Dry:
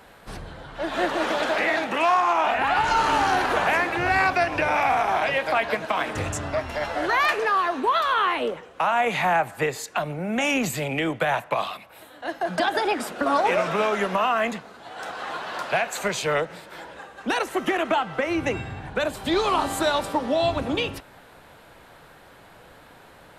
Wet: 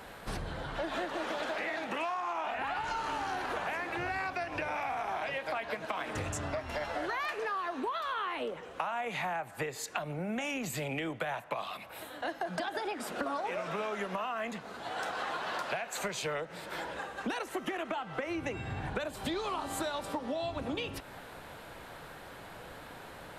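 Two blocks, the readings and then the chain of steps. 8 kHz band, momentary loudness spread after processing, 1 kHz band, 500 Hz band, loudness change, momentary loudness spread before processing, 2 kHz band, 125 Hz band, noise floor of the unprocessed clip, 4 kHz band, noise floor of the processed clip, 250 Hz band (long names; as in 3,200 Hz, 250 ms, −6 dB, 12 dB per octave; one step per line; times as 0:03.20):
−8.5 dB, 8 LU, −12.5 dB, −11.5 dB, −12.5 dB, 12 LU, −12.0 dB, −8.0 dB, −50 dBFS, −11.0 dB, −49 dBFS, −10.5 dB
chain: downward compressor 10 to 1, threshold −34 dBFS, peak gain reduction 18 dB
level +1.5 dB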